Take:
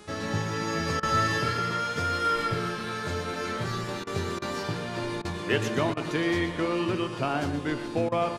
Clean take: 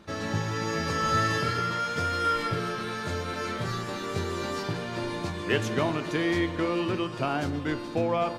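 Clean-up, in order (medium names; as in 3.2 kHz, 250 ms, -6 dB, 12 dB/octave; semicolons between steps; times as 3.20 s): de-hum 420.5 Hz, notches 25; interpolate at 1.00/4.04/4.39/5.22/5.94/8.09 s, 28 ms; inverse comb 121 ms -11 dB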